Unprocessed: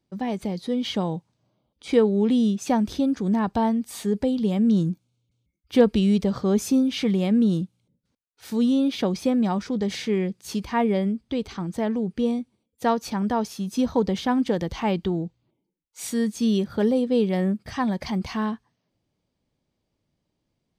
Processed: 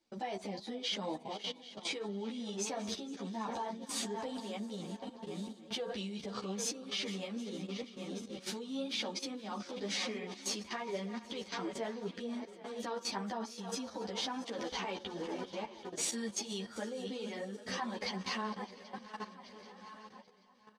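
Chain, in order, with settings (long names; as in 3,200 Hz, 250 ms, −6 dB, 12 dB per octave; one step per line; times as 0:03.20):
feedback delay that plays each chunk backwards 391 ms, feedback 61%, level −13 dB
flanger 0.89 Hz, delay 3 ms, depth 8 ms, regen +27%
in parallel at −2.5 dB: brickwall limiter −21 dBFS, peak gain reduction 11 dB
on the sum: low-shelf EQ 390 Hz −8 dB
downward compressor 2 to 1, threshold −39 dBFS, peak gain reduction 12 dB
low-pass filter 7,100 Hz 12 dB per octave
hum removal 72.27 Hz, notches 25
on a send: repeating echo 461 ms, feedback 56%, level −16 dB
on the sum: output level in coarse steps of 14 dB
bass and treble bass −9 dB, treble +4 dB
string-ensemble chorus
level +8 dB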